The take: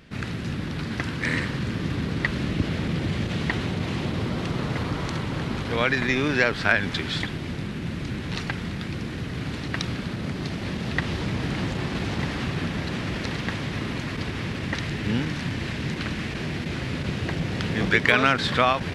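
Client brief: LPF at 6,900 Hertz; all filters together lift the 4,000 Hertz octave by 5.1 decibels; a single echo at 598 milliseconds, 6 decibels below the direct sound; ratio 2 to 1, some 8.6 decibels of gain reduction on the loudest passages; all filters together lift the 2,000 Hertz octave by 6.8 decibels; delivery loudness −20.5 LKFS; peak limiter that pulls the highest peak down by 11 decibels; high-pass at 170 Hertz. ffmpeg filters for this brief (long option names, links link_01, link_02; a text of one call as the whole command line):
ffmpeg -i in.wav -af "highpass=170,lowpass=6900,equalizer=frequency=2000:width_type=o:gain=7.5,equalizer=frequency=4000:width_type=o:gain=4,acompressor=threshold=-25dB:ratio=2,alimiter=limit=-16.5dB:level=0:latency=1,aecho=1:1:598:0.501,volume=7dB" out.wav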